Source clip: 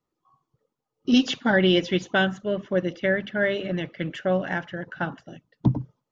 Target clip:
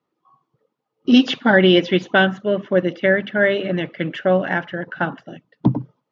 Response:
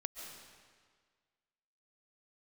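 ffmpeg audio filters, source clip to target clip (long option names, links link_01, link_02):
-af "highpass=160,lowpass=3700,volume=7dB"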